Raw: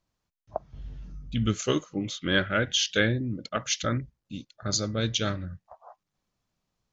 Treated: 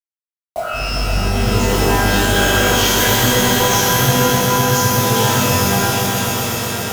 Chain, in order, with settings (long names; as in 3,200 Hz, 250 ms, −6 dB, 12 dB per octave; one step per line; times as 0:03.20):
gain on a spectral selection 0:03.03–0:04.95, 210–5,000 Hz −15 dB
reversed playback
downward compressor 5 to 1, threshold −34 dBFS, peak gain reduction 14 dB
reversed playback
bit reduction 7 bits
on a send: echo that builds up and dies away 129 ms, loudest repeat 5, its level −9.5 dB
on the sum: reverb with rising layers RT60 1.6 s, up +12 semitones, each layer −2 dB, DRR −10.5 dB
level +6.5 dB